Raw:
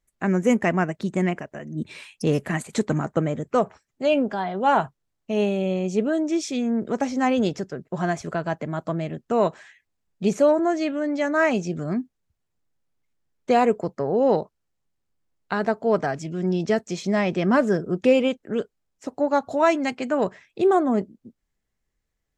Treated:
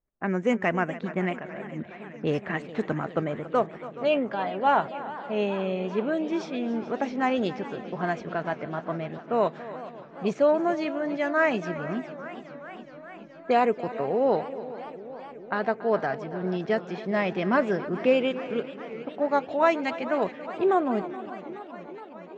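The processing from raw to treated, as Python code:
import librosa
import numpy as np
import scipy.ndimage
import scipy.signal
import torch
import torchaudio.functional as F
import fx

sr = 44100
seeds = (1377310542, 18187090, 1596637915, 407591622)

y = scipy.signal.sosfilt(scipy.signal.butter(2, 3800.0, 'lowpass', fs=sr, output='sos'), x)
y = fx.low_shelf(y, sr, hz=350.0, db=-7.5)
y = fx.env_lowpass(y, sr, base_hz=870.0, full_db=-20.0)
y = fx.echo_feedback(y, sr, ms=281, feedback_pct=48, wet_db=-16.0)
y = fx.echo_warbled(y, sr, ms=420, feedback_pct=78, rate_hz=2.8, cents=161, wet_db=-16.5)
y = y * 10.0 ** (-1.0 / 20.0)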